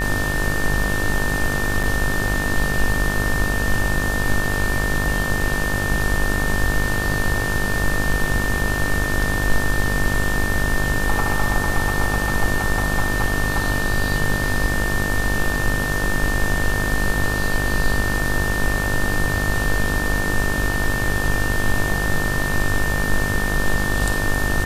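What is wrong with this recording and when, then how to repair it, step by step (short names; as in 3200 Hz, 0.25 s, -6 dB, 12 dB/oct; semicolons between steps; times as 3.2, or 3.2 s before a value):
buzz 50 Hz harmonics 35 -25 dBFS
tone 1800 Hz -24 dBFS
1.83–1.84 gap 5.4 ms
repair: de-hum 50 Hz, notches 35; notch 1800 Hz, Q 30; interpolate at 1.83, 5.4 ms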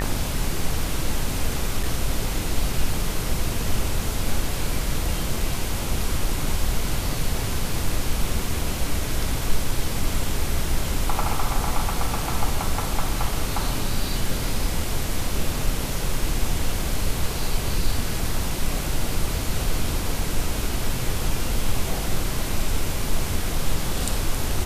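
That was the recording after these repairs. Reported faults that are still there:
none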